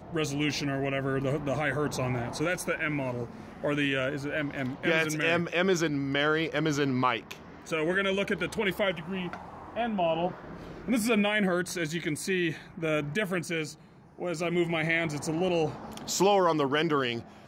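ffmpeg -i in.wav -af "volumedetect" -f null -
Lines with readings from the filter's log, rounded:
mean_volume: -29.2 dB
max_volume: -12.3 dB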